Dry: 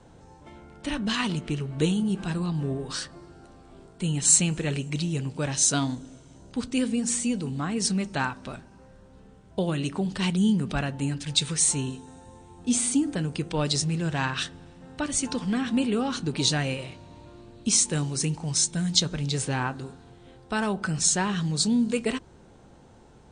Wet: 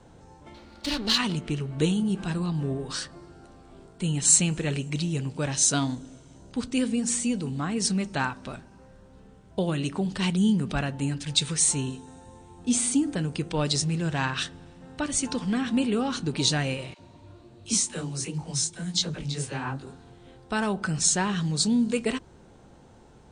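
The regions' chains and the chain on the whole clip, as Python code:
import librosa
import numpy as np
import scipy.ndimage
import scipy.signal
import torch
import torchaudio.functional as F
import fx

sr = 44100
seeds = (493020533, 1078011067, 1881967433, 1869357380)

y = fx.chain(x, sr, fx.lower_of_two(delay_ms=3.5),
    fx.peak_eq(hz=4300.0, db=14.5, octaves=0.73), at=(0.54, 1.18))
y = fx.chain(y, sr, fx.peak_eq(hz=95.0, db=5.0, octaves=0.38),
    fx.dispersion(late='lows', ms=53.0, hz=480.0),
    fx.detune_double(cents=47), at=(16.94, 19.87))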